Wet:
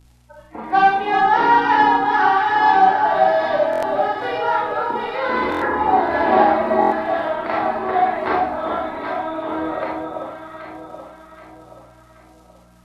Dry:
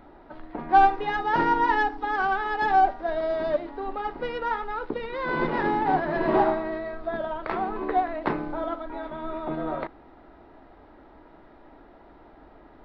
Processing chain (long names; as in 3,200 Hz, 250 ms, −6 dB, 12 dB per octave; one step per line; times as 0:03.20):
sub-octave generator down 2 octaves, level −3 dB
0:05.55–0:06.09: low-pass filter 2,100 Hz → 1,200 Hz 24 dB per octave
noise reduction from a noise print of the clip's start 23 dB
high-pass filter 590 Hz 6 dB per octave
mains hum 60 Hz, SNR 25 dB
flanger 0.17 Hz, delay 2.3 ms, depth 8.1 ms, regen −51%
surface crackle 90 per second −53 dBFS
delay that swaps between a low-pass and a high-pass 389 ms, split 1,100 Hz, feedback 66%, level −3 dB
four-comb reverb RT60 0.46 s, combs from 28 ms, DRR −3 dB
buffer that repeats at 0:03.71/0:05.50/0:06.80, samples 1,024, times 4
level +8 dB
Ogg Vorbis 48 kbit/s 32,000 Hz